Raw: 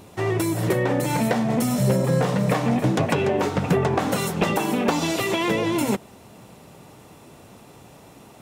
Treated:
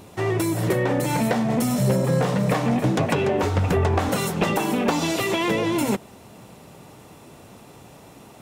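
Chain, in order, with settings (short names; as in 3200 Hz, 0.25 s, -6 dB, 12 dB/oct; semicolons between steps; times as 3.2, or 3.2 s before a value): 3.43–4.09 resonant low shelf 110 Hz +7.5 dB, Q 3; in parallel at -7.5 dB: soft clip -21.5 dBFS, distortion -11 dB; on the sum: gain -2 dB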